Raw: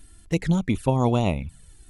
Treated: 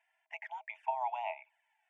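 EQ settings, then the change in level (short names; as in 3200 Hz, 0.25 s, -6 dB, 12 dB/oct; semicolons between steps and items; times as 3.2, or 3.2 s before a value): rippled Chebyshev high-pass 620 Hz, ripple 9 dB; tape spacing loss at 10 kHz 38 dB; fixed phaser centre 830 Hz, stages 8; +3.0 dB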